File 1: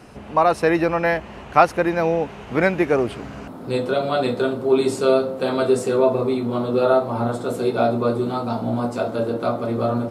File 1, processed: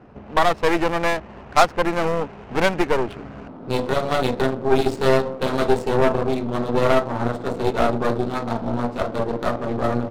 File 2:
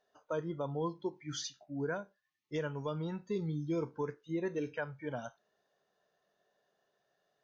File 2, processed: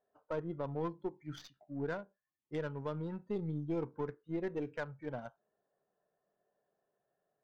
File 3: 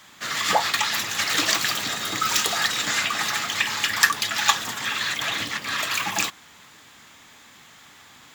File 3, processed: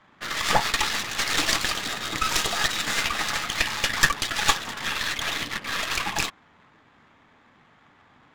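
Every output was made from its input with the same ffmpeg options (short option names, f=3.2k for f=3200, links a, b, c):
-af "aeval=exprs='0.891*(cos(1*acos(clip(val(0)/0.891,-1,1)))-cos(1*PI/2))+0.141*(cos(8*acos(clip(val(0)/0.891,-1,1)))-cos(8*PI/2))':c=same,adynamicsmooth=sensitivity=6.5:basefreq=1.3k,volume=-2dB"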